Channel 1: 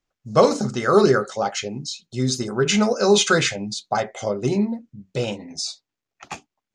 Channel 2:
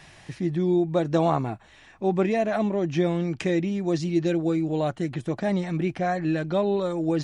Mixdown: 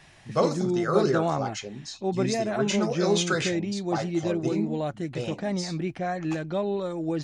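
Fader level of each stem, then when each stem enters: -8.5 dB, -4.0 dB; 0.00 s, 0.00 s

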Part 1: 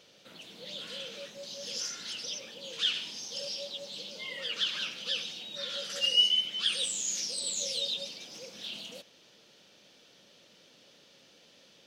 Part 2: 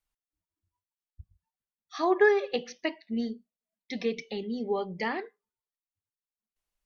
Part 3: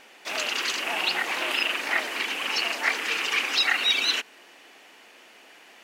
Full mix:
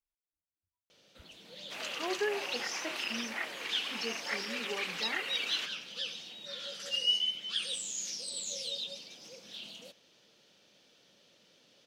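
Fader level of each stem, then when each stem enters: -5.0 dB, -11.5 dB, -12.0 dB; 0.90 s, 0.00 s, 1.45 s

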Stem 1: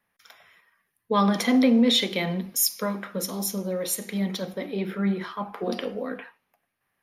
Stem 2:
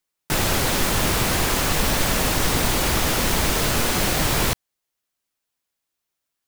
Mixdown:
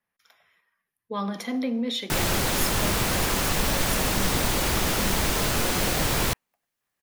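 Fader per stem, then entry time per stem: -8.5 dB, -3.5 dB; 0.00 s, 1.80 s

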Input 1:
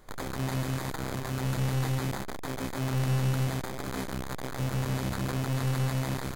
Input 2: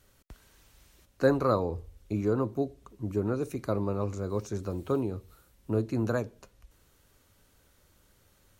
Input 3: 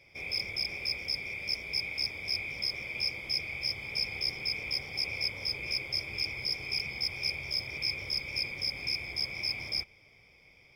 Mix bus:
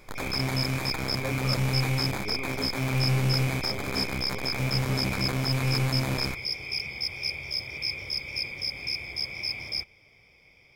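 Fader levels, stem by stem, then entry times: +2.0 dB, -12.0 dB, +1.5 dB; 0.00 s, 0.00 s, 0.00 s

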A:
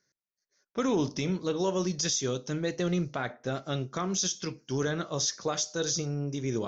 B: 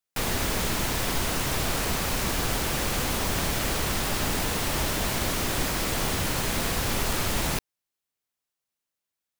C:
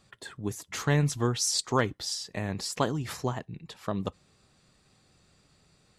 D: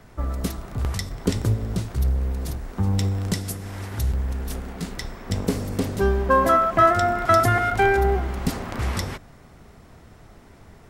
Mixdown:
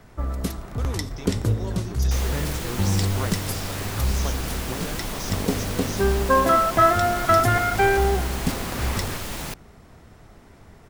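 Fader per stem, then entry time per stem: -8.5 dB, -5.0 dB, -7.0 dB, -0.5 dB; 0.00 s, 1.95 s, 1.45 s, 0.00 s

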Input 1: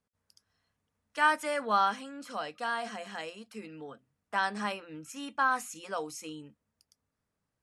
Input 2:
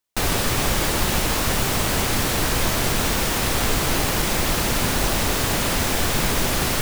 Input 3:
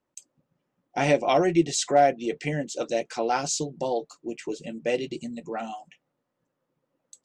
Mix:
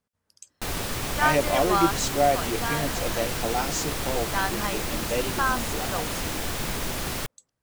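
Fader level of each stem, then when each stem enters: +2.0 dB, -8.5 dB, -2.5 dB; 0.00 s, 0.45 s, 0.25 s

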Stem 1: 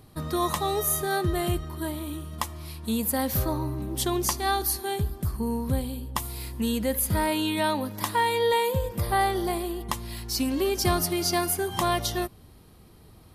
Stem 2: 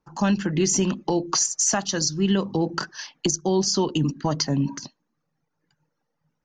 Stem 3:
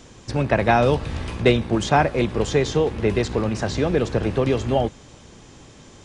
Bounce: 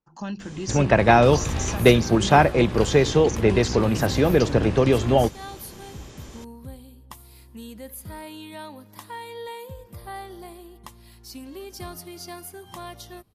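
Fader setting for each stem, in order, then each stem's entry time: -13.0 dB, -11.0 dB, +2.0 dB; 0.95 s, 0.00 s, 0.40 s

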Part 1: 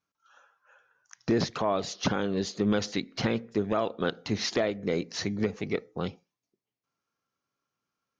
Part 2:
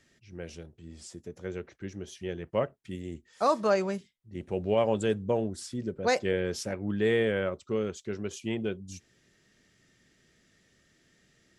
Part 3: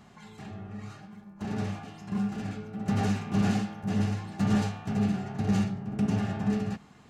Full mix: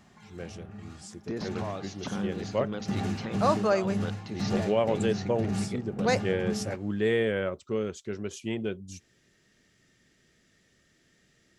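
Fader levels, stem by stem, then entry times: -9.5 dB, 0.0 dB, -4.5 dB; 0.00 s, 0.00 s, 0.00 s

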